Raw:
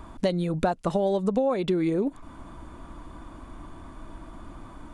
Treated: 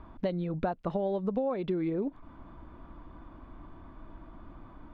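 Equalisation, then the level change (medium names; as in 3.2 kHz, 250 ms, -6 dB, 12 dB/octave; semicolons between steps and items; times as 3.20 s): distance through air 300 m; -5.5 dB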